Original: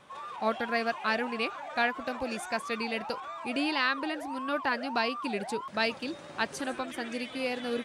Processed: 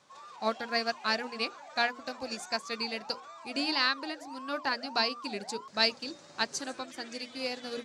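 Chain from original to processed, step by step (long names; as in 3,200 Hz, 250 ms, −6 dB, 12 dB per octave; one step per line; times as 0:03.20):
high-pass filter 87 Hz
flat-topped bell 5,600 Hz +11 dB 1.1 octaves
mains-hum notches 60/120/180/240/300/360/420/480/540/600 Hz
expander for the loud parts 1.5 to 1, over −39 dBFS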